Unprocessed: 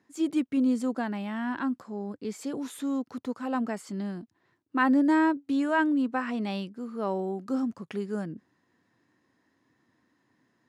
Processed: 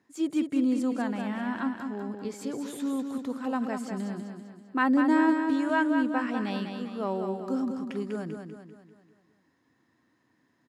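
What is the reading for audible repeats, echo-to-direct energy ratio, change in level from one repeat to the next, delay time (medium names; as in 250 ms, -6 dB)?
5, -5.0 dB, -6.5 dB, 196 ms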